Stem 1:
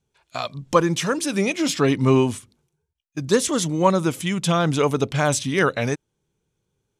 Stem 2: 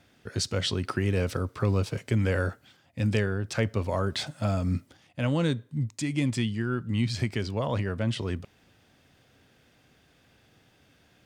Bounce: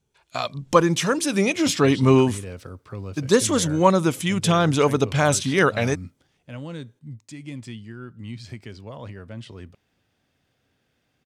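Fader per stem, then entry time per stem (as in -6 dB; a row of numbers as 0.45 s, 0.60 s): +1.0 dB, -9.0 dB; 0.00 s, 1.30 s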